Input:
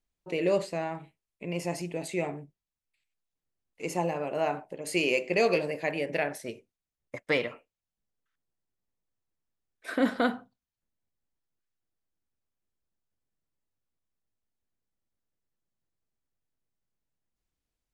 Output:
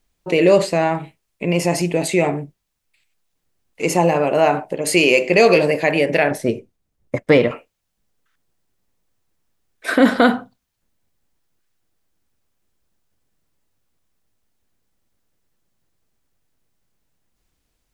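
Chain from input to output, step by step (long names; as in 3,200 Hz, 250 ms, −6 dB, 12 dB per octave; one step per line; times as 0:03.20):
0:06.31–0:07.51: tilt shelving filter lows +6.5 dB, about 740 Hz
in parallel at +1 dB: brickwall limiter −23 dBFS, peak gain reduction 10 dB
on the sum: level +9 dB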